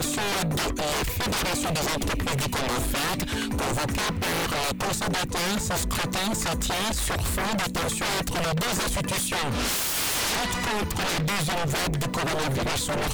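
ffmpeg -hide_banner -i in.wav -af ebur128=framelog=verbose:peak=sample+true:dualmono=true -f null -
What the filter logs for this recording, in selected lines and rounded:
Integrated loudness:
  I:         -22.8 LUFS
  Threshold: -32.8 LUFS
Loudness range:
  LRA:         1.1 LU
  Threshold: -42.8 LUFS
  LRA low:   -23.2 LUFS
  LRA high:  -22.2 LUFS
Sample peak:
  Peak:      -19.7 dBFS
True peak:
  Peak:      -19.3 dBFS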